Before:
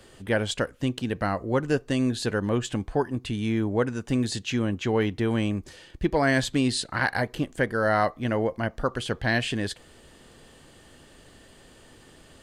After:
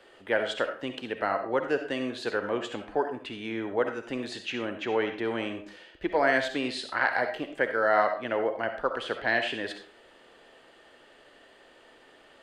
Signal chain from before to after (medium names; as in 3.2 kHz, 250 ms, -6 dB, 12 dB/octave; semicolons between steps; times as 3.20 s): three-band isolator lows -21 dB, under 330 Hz, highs -16 dB, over 3.7 kHz; band-stop 1.1 kHz, Q 23; on a send: reverberation RT60 0.40 s, pre-delay 25 ms, DRR 6.5 dB